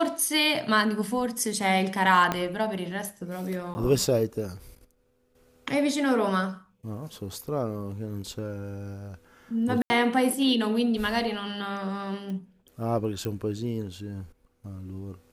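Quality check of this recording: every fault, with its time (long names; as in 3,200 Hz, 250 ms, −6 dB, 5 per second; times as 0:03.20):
0:02.32: click −11 dBFS
0:03.74–0:03.75: drop-out 10 ms
0:09.82–0:09.90: drop-out 80 ms
0:12.30: click −27 dBFS
0:13.25: click −19 dBFS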